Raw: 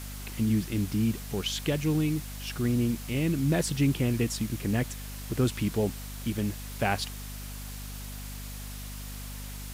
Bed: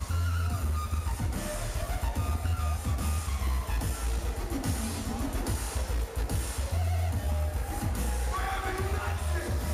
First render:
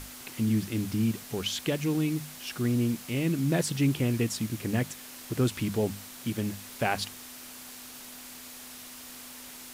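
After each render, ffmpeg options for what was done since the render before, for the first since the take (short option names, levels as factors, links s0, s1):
-af "bandreject=f=50:t=h:w=6,bandreject=f=100:t=h:w=6,bandreject=f=150:t=h:w=6,bandreject=f=200:t=h:w=6"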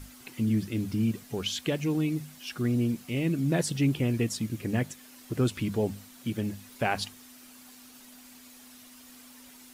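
-af "afftdn=nr=9:nf=-45"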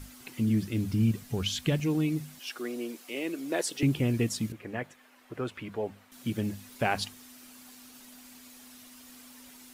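-filter_complex "[0:a]asettb=1/sr,asplit=3[s0][s1][s2];[s0]atrim=end=0.604[s3];[s1]atrim=start=0.6:end=1.8,asetpts=PTS-STARTPTS,afade=t=in:d=0.004:c=qsin,afade=t=out:st=1.196:d=0.004:c=qsin,asubboost=boost=8.5:cutoff=180[s4];[s2]atrim=start=1.796[s5];[s3][s4]acrossfade=d=0.004:c1=hsin:c2=qsin[s6];[s6][s5]acrossfade=d=0.004:c1=qsin:c2=hsin,asettb=1/sr,asplit=3[s7][s8][s9];[s7]atrim=end=2.394[s10];[s8]atrim=start=2.39:end=3.83,asetpts=PTS-STARTPTS,afade=t=in:d=0.004:c=qsin,afade=t=out:st=1.436:d=0.004:c=qsin,highpass=f=330:w=0.5412,highpass=f=330:w=1.3066[s11];[s9]atrim=start=3.826[s12];[s10][s11]acrossfade=d=0.004:c1=hsin:c2=qsin[s13];[s13][s12]acrossfade=d=0.004:c1=qsin:c2=hsin,asettb=1/sr,asplit=3[s14][s15][s16];[s14]atrim=end=4.524[s17];[s15]atrim=start=4.52:end=6.12,asetpts=PTS-STARTPTS,afade=t=in:d=0.004:c=qsin,afade=t=out:st=1.596:d=0.004:c=qsin,acrossover=split=430 2700:gain=0.224 1 0.158[s18][s19][s20];[s18][s19][s20]amix=inputs=3:normalize=0[s21];[s16]atrim=start=6.116[s22];[s17][s21]acrossfade=d=0.004:c1=hsin:c2=qsin[s23];[s23][s22]acrossfade=d=0.004:c1=qsin:c2=hsin"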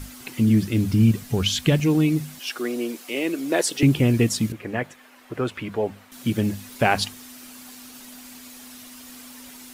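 -af "volume=2.66"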